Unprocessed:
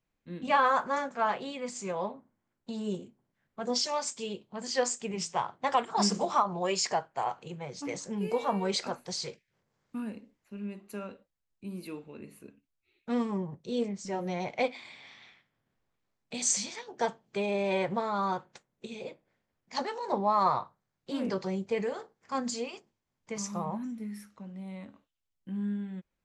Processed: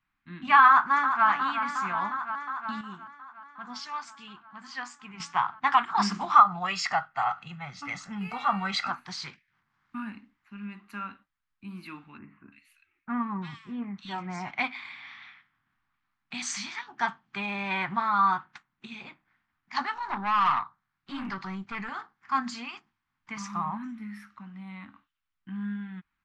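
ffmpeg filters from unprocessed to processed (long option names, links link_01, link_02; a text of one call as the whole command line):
ffmpeg -i in.wav -filter_complex "[0:a]asplit=2[link_01][link_02];[link_02]afade=type=in:start_time=0.67:duration=0.01,afade=type=out:start_time=1.27:duration=0.01,aecho=0:1:360|720|1080|1440|1800|2160|2520|2880|3240|3600|3960|4320:0.398107|0.318486|0.254789|0.203831|0.163065|0.130452|0.104361|0.0834891|0.0667913|0.053433|0.0427464|0.0341971[link_03];[link_01][link_03]amix=inputs=2:normalize=0,asettb=1/sr,asplit=3[link_04][link_05][link_06];[link_04]atrim=end=6.354[link_07];[link_05]atrim=start=6.35:end=8.91,asetpts=PTS-STARTPTS,afade=type=in:duration=0.004:curve=qsin,afade=type=out:start_time=2.556:duration=0.004:curve=qsin,aecho=1:1:1.5:0.63,atrim=end_sample=112896[link_08];[link_06]atrim=start=8.906[link_09];[link_07][link_08]acrossfade=duration=0.004:curve1=hsin:curve2=qsin[link_10];[link_10][link_09]acrossfade=duration=0.004:curve1=qsin:curve2=hsin,asettb=1/sr,asplit=3[link_11][link_12][link_13];[link_11]atrim=end=12.184[link_14];[link_12]atrim=start=12.18:end=14.51,asetpts=PTS-STARTPTS,afade=type=in:duration=0.004:curve=qsin,afade=type=out:start_time=2.326:duration=0.004:curve=qsin,acrossover=split=2000[link_15][link_16];[link_16]adelay=340[link_17];[link_15][link_17]amix=inputs=2:normalize=0,atrim=end_sample=102753[link_18];[link_13]atrim=start=14.506[link_19];[link_14][link_18]acrossfade=duration=0.004:curve1=hsin:curve2=qsin[link_20];[link_20][link_19]acrossfade=duration=0.004:curve1=qsin:curve2=hsin,asettb=1/sr,asplit=3[link_21][link_22][link_23];[link_21]atrim=end=19.944[link_24];[link_22]atrim=start=19.94:end=21.89,asetpts=PTS-STARTPTS,afade=type=in:duration=0.004:curve=qsin,afade=type=out:start_time=1.946:duration=0.004:curve=qsin,aeval=exprs='(tanh(22.4*val(0)+0.35)-tanh(0.35))/22.4':channel_layout=same[link_25];[link_23]atrim=start=21.886[link_26];[link_24][link_25]acrossfade=duration=0.004:curve1=hsin:curve2=qsin[link_27];[link_27][link_26]acrossfade=duration=0.004:curve1=qsin:curve2=hsin,asplit=3[link_28][link_29][link_30];[link_28]atrim=end=2.812[link_31];[link_29]atrim=start=2.808:end=5.202,asetpts=PTS-STARTPTS,volume=-8.5dB[link_32];[link_30]atrim=start=5.198[link_33];[link_31][link_32]acrossfade=duration=0.004:curve1=hsin:curve2=hsin[link_34];[link_34][link_33]acrossfade=duration=0.004:curve1=hsin:curve2=hsin,firequalizer=gain_entry='entry(290,0);entry(490,-23);entry(750,1);entry(1200,13);entry(2700,6);entry(7300,-9)':delay=0.05:min_phase=1,volume=-1dB" out.wav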